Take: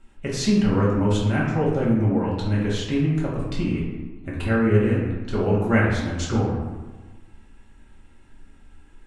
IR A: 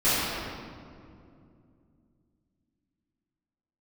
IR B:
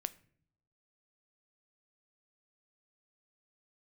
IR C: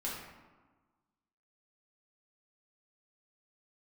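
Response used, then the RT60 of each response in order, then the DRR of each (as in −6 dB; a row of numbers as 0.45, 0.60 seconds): C; 2.5 s, non-exponential decay, 1.3 s; −15.5, 13.5, −6.0 decibels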